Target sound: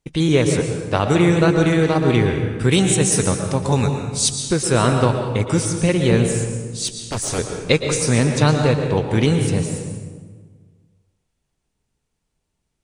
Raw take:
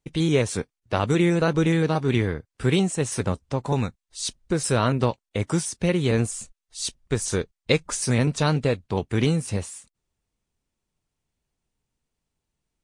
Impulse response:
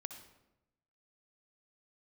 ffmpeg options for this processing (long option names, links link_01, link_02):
-filter_complex "[0:a]asettb=1/sr,asplit=3[link_01][link_02][link_03];[link_01]atrim=end=2.714[link_04];[link_02]atrim=start=2.71:end=4.56,asetpts=PTS-STARTPTS,afade=type=in:duration=0.004:curve=qsin,afade=type=out:start_time=1.846:duration=0.004:curve=qsin,highshelf=frequency=5000:gain=10.5[link_05];[link_03]atrim=start=4.556[link_06];[link_04][link_05]acrossfade=duration=0.004:curve1=hsin:curve2=qsin[link_07];[link_07][link_06]acrossfade=duration=0.004:curve1=qsin:curve2=hsin,asettb=1/sr,asplit=3[link_08][link_09][link_10];[link_08]atrim=end=6.874[link_11];[link_09]atrim=start=6.87:end=7.39,asetpts=PTS-STARTPTS,afade=type=in:duration=0.004:curve=qsin,afade=type=out:start_time=0.516:duration=0.004:curve=qsin,aeval=exprs='0.075*(abs(mod(val(0)/0.075+3,4)-2)-1)':channel_layout=same[link_12];[link_10]atrim=start=7.386[link_13];[link_11][link_12]acrossfade=duration=0.004:curve1=hsin:curve2=qsin[link_14];[link_14][link_13]acrossfade=duration=0.004:curve1=qsin:curve2=hsin[link_15];[1:a]atrim=start_sample=2205,asetrate=22932,aresample=44100[link_16];[link_15][link_16]afir=irnorm=-1:irlink=0,volume=5dB"